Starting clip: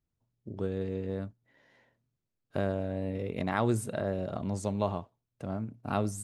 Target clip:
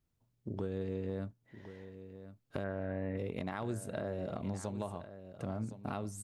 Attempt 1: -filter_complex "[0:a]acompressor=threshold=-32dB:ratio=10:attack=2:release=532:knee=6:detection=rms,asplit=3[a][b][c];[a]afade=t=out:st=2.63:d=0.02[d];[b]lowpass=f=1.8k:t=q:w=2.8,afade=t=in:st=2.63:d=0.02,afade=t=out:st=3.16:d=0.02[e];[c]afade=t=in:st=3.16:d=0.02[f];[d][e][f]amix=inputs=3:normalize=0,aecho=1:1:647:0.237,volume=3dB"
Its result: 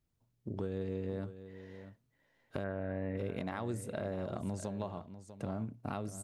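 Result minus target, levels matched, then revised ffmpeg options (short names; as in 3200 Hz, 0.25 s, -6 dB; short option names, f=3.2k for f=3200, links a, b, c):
echo 0.416 s early
-filter_complex "[0:a]acompressor=threshold=-32dB:ratio=10:attack=2:release=532:knee=6:detection=rms,asplit=3[a][b][c];[a]afade=t=out:st=2.63:d=0.02[d];[b]lowpass=f=1.8k:t=q:w=2.8,afade=t=in:st=2.63:d=0.02,afade=t=out:st=3.16:d=0.02[e];[c]afade=t=in:st=3.16:d=0.02[f];[d][e][f]amix=inputs=3:normalize=0,aecho=1:1:1063:0.237,volume=3dB"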